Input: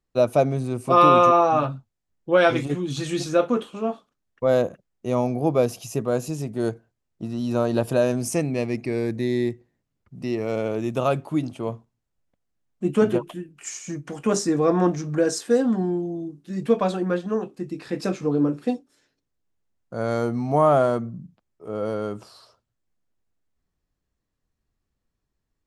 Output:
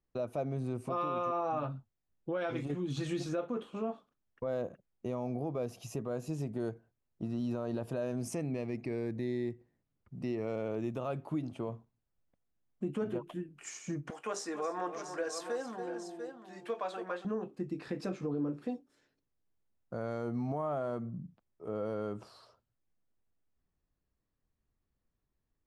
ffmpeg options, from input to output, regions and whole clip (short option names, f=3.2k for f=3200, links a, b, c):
-filter_complex "[0:a]asettb=1/sr,asplit=3[a][b][c];[a]atrim=end=14.104[d];[b]atrim=start=14.1:end=17.25,asetpts=PTS-STARTPTS,afade=t=in:d=0.004:c=qsin,afade=t=out:st=3.146:d=0.004:c=qsin,highpass=700,aecho=1:1:278|692:0.224|0.251,atrim=end_sample=138915[e];[c]atrim=start=17.246[f];[d][e]acrossfade=d=0.004:c1=hsin:c2=qsin[g];[g][f]acrossfade=d=0.004:c1=qsin:c2=hsin,highshelf=f=3.5k:g=-9.5,acompressor=threshold=-29dB:ratio=2.5,alimiter=limit=-22dB:level=0:latency=1:release=34,volume=-4dB"